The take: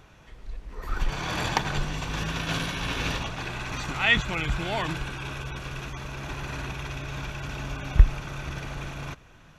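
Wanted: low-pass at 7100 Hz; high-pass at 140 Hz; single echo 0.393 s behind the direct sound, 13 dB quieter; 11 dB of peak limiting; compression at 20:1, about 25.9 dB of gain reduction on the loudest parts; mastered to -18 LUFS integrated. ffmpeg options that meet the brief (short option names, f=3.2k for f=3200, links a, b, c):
-af "highpass=140,lowpass=7.1k,acompressor=threshold=-41dB:ratio=20,alimiter=level_in=12dB:limit=-24dB:level=0:latency=1,volume=-12dB,aecho=1:1:393:0.224,volume=27.5dB"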